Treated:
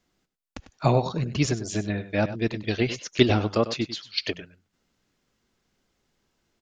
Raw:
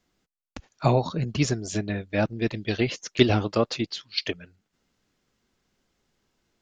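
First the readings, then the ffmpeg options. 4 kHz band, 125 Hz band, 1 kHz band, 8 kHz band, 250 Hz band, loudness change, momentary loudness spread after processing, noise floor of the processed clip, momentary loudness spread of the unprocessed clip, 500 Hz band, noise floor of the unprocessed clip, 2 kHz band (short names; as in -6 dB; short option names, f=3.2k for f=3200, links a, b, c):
0.0 dB, +0.5 dB, +0.5 dB, 0.0 dB, 0.0 dB, 0.0 dB, 8 LU, -79 dBFS, 8 LU, 0.0 dB, -80 dBFS, 0.0 dB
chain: -af "aecho=1:1:98:0.224"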